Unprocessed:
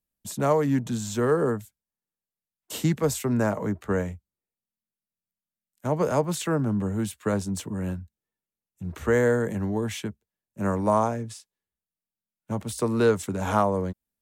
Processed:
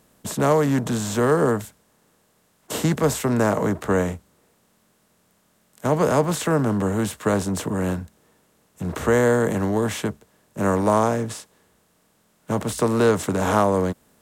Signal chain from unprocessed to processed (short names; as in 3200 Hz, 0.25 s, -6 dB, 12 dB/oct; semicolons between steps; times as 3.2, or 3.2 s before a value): per-bin compression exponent 0.6; gain +1 dB